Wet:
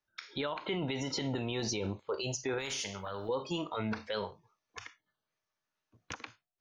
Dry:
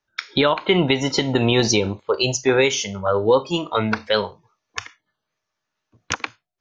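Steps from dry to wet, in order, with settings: peak limiter -17 dBFS, peak gain reduction 11.5 dB; 2.58–3.29 s: spectrum-flattening compressor 2:1; trim -8.5 dB

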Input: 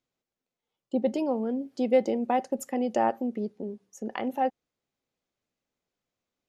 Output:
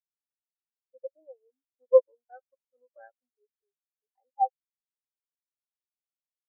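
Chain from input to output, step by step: 1.48–3.32 s: comb filter that takes the minimum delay 0.45 ms; Bessel high-pass 560 Hz, order 4; spectral contrast expander 4:1; trim +7 dB

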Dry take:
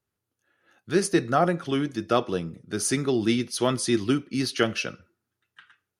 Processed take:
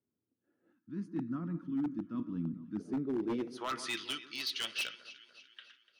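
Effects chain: band-pass sweep 260 Hz -> 3.4 kHz, 3.12–4.01 s; reverse; compression 8:1, threshold -36 dBFS, peak gain reduction 15.5 dB; reverse; echo whose repeats swap between lows and highs 147 ms, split 1.5 kHz, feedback 70%, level -14 dB; time-frequency box 0.72–2.79 s, 340–900 Hz -19 dB; wavefolder -33 dBFS; trim +5 dB

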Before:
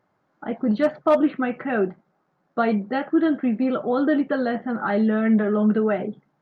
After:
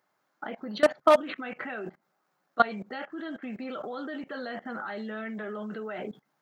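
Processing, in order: high-pass 75 Hz 6 dB/octave; tilt EQ +3.5 dB/octave; level held to a coarse grid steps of 20 dB; trim +4 dB

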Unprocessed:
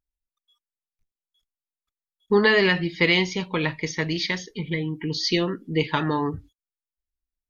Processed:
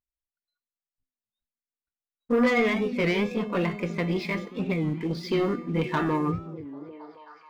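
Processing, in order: pitch bend over the whole clip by +3.5 st ending unshifted; low-pass 1.8 kHz 12 dB/octave; in parallel at +1.5 dB: peak limiter -18.5 dBFS, peak gain reduction 10.5 dB; on the sum: waveshaping leveller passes 2; feedback comb 240 Hz, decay 0.68 s, harmonics odd, mix 80%; on a send: repeats whose band climbs or falls 266 ms, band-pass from 170 Hz, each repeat 0.7 oct, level -8 dB; on the sum: warped record 33 1/3 rpm, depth 160 cents; trim +2 dB

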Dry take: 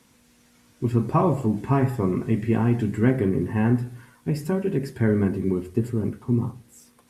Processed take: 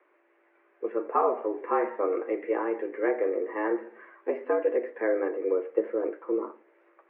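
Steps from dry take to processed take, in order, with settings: gain riding within 4 dB 0.5 s; mistuned SSB +100 Hz 290–2100 Hz

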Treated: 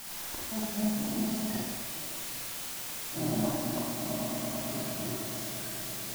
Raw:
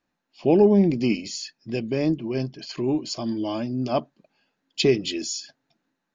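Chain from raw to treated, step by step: time reversed locally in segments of 181 ms; Doppler pass-by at 2.05 s, 18 m/s, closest 3.2 m; low-pass 2.5 kHz; peaking EQ 660 Hz +10.5 dB 1.1 oct; upward compressor, threshold -32 dBFS; on a send: echo with a slow build-up 111 ms, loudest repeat 5, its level -13 dB; on the sum: inverted gate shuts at -22 dBFS, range -31 dB; static phaser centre 1.1 kHz, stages 4; in parallel at -8.5 dB: word length cut 6-bit, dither triangular; on the sum: Schroeder reverb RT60 1.2 s, combs from 33 ms, DRR -4.5 dB

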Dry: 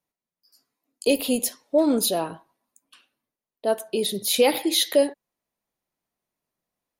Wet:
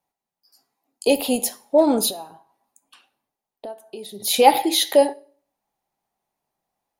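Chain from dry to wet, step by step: peaking EQ 810 Hz +13.5 dB 0.42 oct; 2.10–4.20 s: compression 10:1, threshold -35 dBFS, peak gain reduction 22 dB; reverberation RT60 0.50 s, pre-delay 3 ms, DRR 14.5 dB; trim +1.5 dB

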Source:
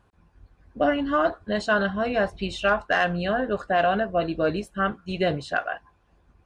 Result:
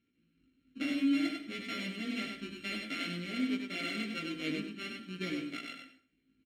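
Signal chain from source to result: sorted samples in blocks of 32 samples; vowel filter i; on a send at -9.5 dB: reverberation RT60 0.45 s, pre-delay 67 ms; on the sum: chorus 0.57 Hz, delay 16.5 ms, depth 2.7 ms; delay 97 ms -5 dB; trim +5 dB

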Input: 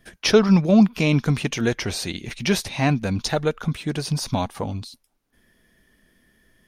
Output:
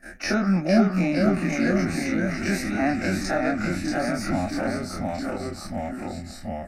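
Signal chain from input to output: every event in the spectrogram widened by 60 ms; ever faster or slower copies 441 ms, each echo -1 st, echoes 3; in parallel at +3 dB: compression, threshold -24 dBFS, peak gain reduction 16.5 dB; on the sum: treble shelf 4.7 kHz -10 dB; static phaser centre 660 Hz, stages 8; de-hum 125 Hz, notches 28; trim -6 dB

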